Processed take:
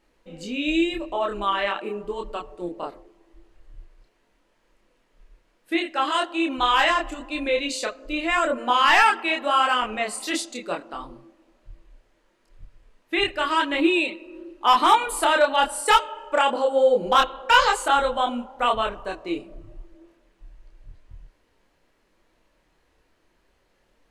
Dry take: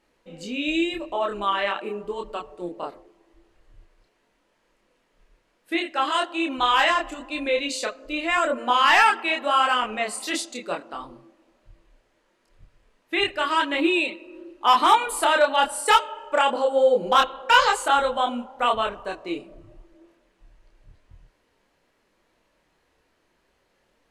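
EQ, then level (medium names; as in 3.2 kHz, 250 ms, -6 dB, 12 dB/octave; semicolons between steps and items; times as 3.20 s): bass shelf 62 Hz +10.5 dB; peaking EQ 320 Hz +2.5 dB 0.21 oct; 0.0 dB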